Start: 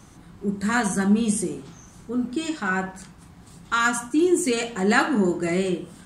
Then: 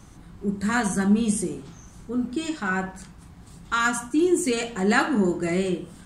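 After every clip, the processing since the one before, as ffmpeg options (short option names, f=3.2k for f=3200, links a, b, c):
-af "lowshelf=f=69:g=10.5,volume=-1.5dB"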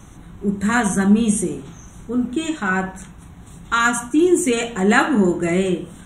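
-af "asuperstop=centerf=4800:order=8:qfactor=3.1,volume=5.5dB"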